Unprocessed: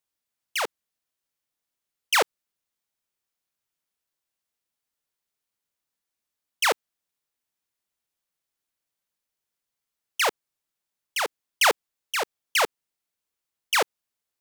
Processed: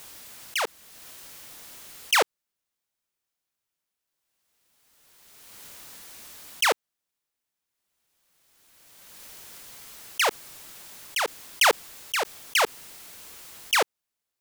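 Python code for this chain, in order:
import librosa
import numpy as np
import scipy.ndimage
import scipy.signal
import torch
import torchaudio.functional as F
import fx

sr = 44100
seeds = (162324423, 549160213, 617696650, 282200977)

y = fx.pre_swell(x, sr, db_per_s=25.0)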